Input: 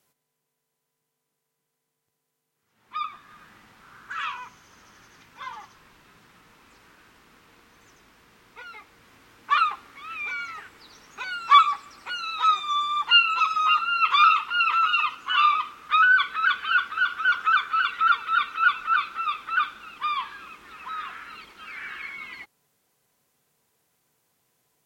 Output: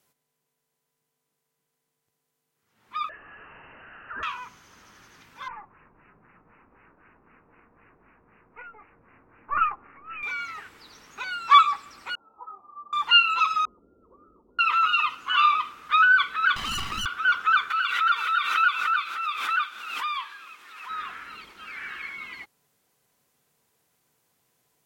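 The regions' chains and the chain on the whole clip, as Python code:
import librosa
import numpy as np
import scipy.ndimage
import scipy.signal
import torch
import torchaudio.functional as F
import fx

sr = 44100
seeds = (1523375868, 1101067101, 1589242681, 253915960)

y = fx.chain(x, sr, fx.crossing_spikes(level_db=-32.5),
    fx.freq_invert(carrier_hz=2900),
    fx.band_squash(depth_pct=40), at=(3.09, 4.23))
y = fx.chain(y, sr, fx.halfwave_gain(db=-3.0),
    fx.filter_lfo_lowpass(shape='sine', hz=3.9, low_hz=730.0, high_hz=2800.0, q=0.94),
    fx.resample_bad(factor=8, down='none', up='filtered'), at=(5.48, 10.23))
y = fx.chain(y, sr, fx.ellip_lowpass(hz=900.0, order=4, stop_db=70),
    fx.low_shelf(hz=300.0, db=-11.0),
    fx.ensemble(), at=(12.15, 12.93))
y = fx.chain(y, sr, fx.steep_lowpass(hz=550.0, slope=36),
    fx.peak_eq(hz=130.0, db=-13.0, octaves=0.46), at=(13.65, 14.59))
y = fx.chain(y, sr, fx.lower_of_two(delay_ms=1.0),
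    fx.clip_hard(threshold_db=-27.5),
    fx.env_flatten(amount_pct=70), at=(16.56, 17.06))
y = fx.chain(y, sr, fx.highpass(hz=1300.0, slope=6),
    fx.pre_swell(db_per_s=48.0), at=(17.7, 20.9))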